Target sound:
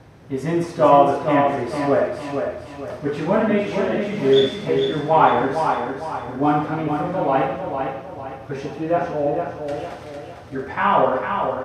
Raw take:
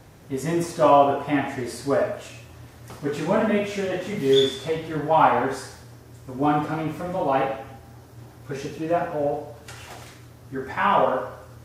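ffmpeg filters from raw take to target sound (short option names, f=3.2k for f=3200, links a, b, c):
-filter_complex "[0:a]highpass=f=340:p=1,aemphasis=mode=reproduction:type=bsi,bandreject=f=7.1k:w=8.8,asplit=2[a][b];[b]aecho=0:1:454|908|1362|1816|2270:0.501|0.205|0.0842|0.0345|0.0142[c];[a][c]amix=inputs=2:normalize=0,volume=3dB"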